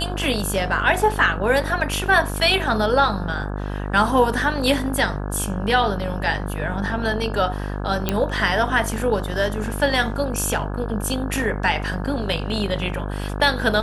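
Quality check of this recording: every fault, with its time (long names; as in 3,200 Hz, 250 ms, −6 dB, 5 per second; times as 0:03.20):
mains buzz 50 Hz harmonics 34 −27 dBFS
0:08.09: click −5 dBFS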